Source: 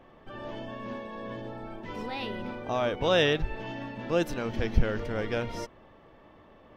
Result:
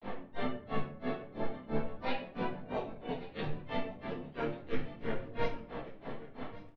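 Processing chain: low-pass 4.1 kHz 24 dB/octave; bass shelf 200 Hz -7 dB; band-stop 1.2 kHz, Q 5.6; de-hum 94.88 Hz, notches 17; reverse; compression 6:1, threshold -42 dBFS, peak gain reduction 20.5 dB; reverse; peak limiter -42 dBFS, peak gain reduction 10 dB; granulator 173 ms, grains 3 per s, pitch spread up and down by 0 st; harmony voices -7 st -4 dB, -5 st -8 dB, +3 st -8 dB; on a send: delay 1139 ms -17 dB; on the sum: simulated room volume 890 m³, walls furnished, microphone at 1.7 m; detune thickener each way 13 cents; trim +17.5 dB

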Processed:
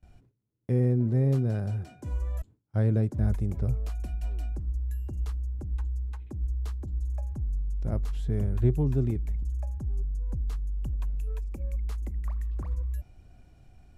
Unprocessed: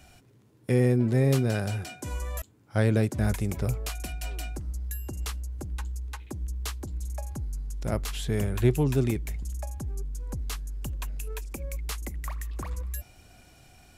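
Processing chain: tilt EQ -3 dB/octave; gate with hold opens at -39 dBFS; dynamic bell 2.6 kHz, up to -4 dB, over -49 dBFS, Q 1.3; trim -9 dB

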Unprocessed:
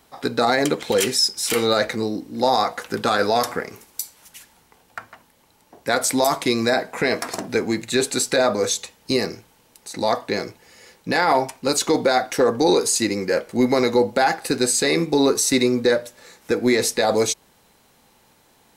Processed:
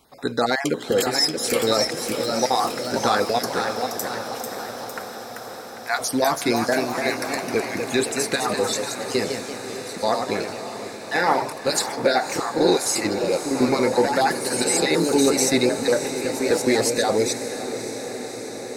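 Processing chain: random holes in the spectrogram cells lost 28%; ever faster or slower copies 668 ms, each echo +1 st, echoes 3, each echo -6 dB; echo that smears into a reverb 583 ms, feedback 74%, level -11 dB; trim -1.5 dB

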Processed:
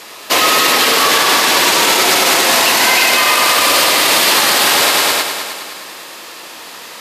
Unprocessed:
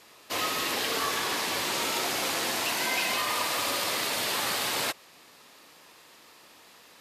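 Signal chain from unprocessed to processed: high-pass 290 Hz 6 dB/octave; on a send: multi-head delay 103 ms, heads all three, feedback 48%, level -10 dB; on the sum: loudness maximiser +21.5 dB; trim -1 dB

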